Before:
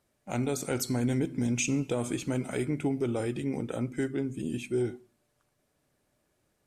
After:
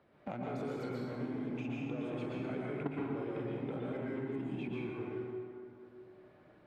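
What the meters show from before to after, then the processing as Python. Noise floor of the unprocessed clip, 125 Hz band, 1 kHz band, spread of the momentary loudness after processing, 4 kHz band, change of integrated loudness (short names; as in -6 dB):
-75 dBFS, -9.5 dB, -3.5 dB, 12 LU, -14.0 dB, -8.5 dB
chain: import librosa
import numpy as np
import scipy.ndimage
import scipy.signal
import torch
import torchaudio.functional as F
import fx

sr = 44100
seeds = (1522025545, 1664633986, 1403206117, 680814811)

p1 = fx.high_shelf(x, sr, hz=2900.0, db=-2.5)
p2 = p1 + fx.echo_feedback(p1, sr, ms=110, feedback_pct=48, wet_db=-19.5, dry=0)
p3 = fx.leveller(p2, sr, passes=2)
p4 = fx.level_steps(p3, sr, step_db=22)
p5 = 10.0 ** (-28.5 / 20.0) * np.tanh(p4 / 10.0 ** (-28.5 / 20.0))
p6 = fx.highpass(p5, sr, hz=200.0, slope=6)
p7 = fx.air_absorb(p6, sr, metres=410.0)
p8 = fx.rev_plate(p7, sr, seeds[0], rt60_s=1.5, hf_ratio=0.65, predelay_ms=105, drr_db=-4.5)
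p9 = fx.band_squash(p8, sr, depth_pct=70)
y = p9 * 10.0 ** (2.5 / 20.0)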